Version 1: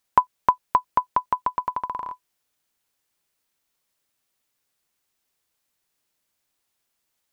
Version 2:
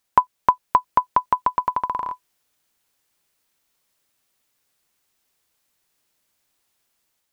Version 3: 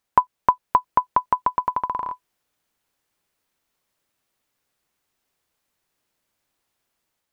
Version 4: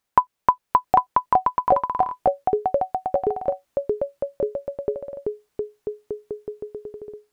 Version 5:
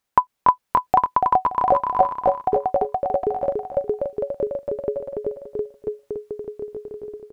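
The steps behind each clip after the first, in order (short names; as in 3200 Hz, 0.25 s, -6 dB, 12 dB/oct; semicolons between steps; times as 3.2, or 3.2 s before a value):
AGC gain up to 3.5 dB; gain +1.5 dB
high shelf 2700 Hz -7 dB
echoes that change speed 0.704 s, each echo -5 st, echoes 3
feedback echo 0.287 s, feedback 24%, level -4 dB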